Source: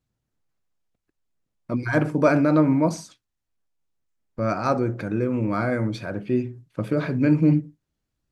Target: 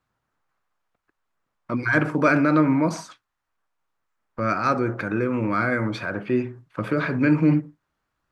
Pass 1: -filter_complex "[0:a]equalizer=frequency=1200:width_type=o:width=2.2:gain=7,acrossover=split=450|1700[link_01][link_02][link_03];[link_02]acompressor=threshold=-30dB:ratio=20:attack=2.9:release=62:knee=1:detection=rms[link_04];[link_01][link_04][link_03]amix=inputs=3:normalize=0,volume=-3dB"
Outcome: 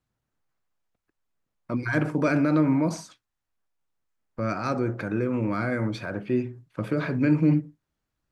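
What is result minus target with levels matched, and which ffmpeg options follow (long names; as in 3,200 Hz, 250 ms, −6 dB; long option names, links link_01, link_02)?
1,000 Hz band −4.0 dB
-filter_complex "[0:a]equalizer=frequency=1200:width_type=o:width=2.2:gain=18.5,acrossover=split=450|1700[link_01][link_02][link_03];[link_02]acompressor=threshold=-30dB:ratio=20:attack=2.9:release=62:knee=1:detection=rms[link_04];[link_01][link_04][link_03]amix=inputs=3:normalize=0,volume=-3dB"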